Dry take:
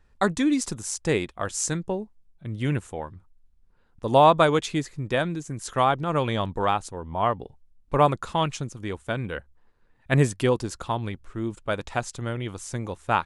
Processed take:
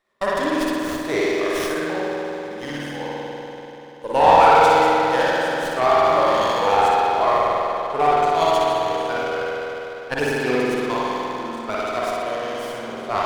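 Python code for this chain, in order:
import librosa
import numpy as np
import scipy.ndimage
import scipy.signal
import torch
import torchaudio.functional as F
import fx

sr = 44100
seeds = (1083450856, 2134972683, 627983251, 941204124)

y = fx.spec_ripple(x, sr, per_octave=1.2, drift_hz=-0.84, depth_db=12)
y = scipy.signal.sosfilt(scipy.signal.butter(2, 470.0, 'highpass', fs=sr, output='sos'), y)
y = fx.peak_eq(y, sr, hz=1400.0, db=-4.0, octaves=1.4)
y = fx.room_flutter(y, sr, wall_m=10.4, rt60_s=0.56)
y = fx.rev_spring(y, sr, rt60_s=3.7, pass_ms=(48,), chirp_ms=45, drr_db=-8.0)
y = fx.running_max(y, sr, window=5)
y = F.gain(torch.from_numpy(y), -1.0).numpy()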